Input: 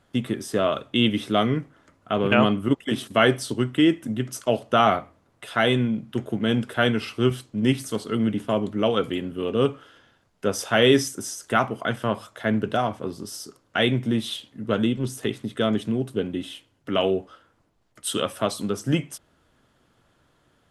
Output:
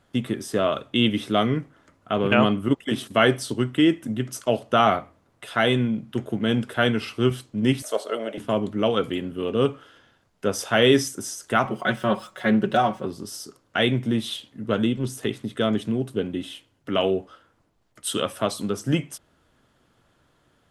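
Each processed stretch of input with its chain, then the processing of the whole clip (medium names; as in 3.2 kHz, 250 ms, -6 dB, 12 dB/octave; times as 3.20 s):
7.82–8.38 s: resonant high-pass 600 Hz, resonance Q 7.3 + band-stop 4.7 kHz
11.65–13.06 s: median filter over 3 samples + comb 5.4 ms, depth 94% + loudspeaker Doppler distortion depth 0.12 ms
whole clip: none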